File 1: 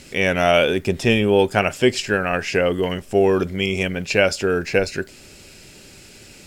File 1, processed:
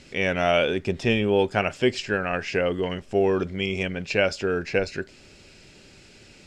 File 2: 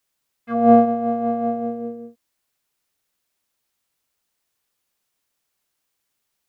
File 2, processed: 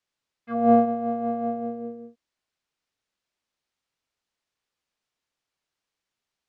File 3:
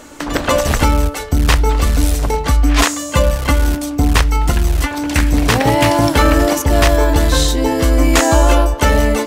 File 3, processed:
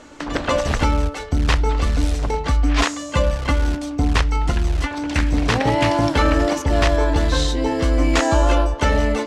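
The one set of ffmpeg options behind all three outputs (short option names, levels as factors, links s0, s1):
-af "lowpass=5700,volume=0.562"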